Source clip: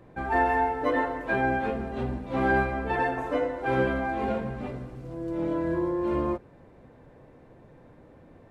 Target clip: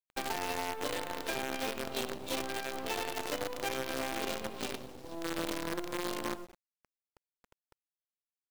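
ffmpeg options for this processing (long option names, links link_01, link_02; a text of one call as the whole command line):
ffmpeg -i in.wav -filter_complex "[0:a]highpass=280,aemphasis=mode=reproduction:type=75fm,acrossover=split=3200[link_01][link_02];[link_02]acompressor=threshold=-59dB:ratio=4:attack=1:release=60[link_03];[link_01][link_03]amix=inputs=2:normalize=0,equalizer=frequency=390:width=2.4:gain=3,asplit=2[link_04][link_05];[link_05]adelay=95,lowpass=frequency=3400:poles=1,volume=-8dB,asplit=2[link_06][link_07];[link_07]adelay=95,lowpass=frequency=3400:poles=1,volume=0.17,asplit=2[link_08][link_09];[link_09]adelay=95,lowpass=frequency=3400:poles=1,volume=0.17[link_10];[link_06][link_08][link_10]amix=inputs=3:normalize=0[link_11];[link_04][link_11]amix=inputs=2:normalize=0,alimiter=limit=-19dB:level=0:latency=1:release=195,acompressor=threshold=-33dB:ratio=6,aexciter=amount=13.9:drive=8.3:freq=2900,anlmdn=0.158,acrusher=bits=6:dc=4:mix=0:aa=0.000001" out.wav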